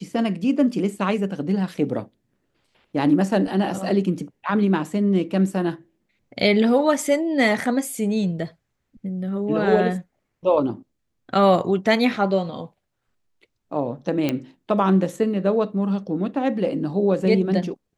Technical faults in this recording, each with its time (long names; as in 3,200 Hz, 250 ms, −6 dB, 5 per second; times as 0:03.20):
0:14.29: click −9 dBFS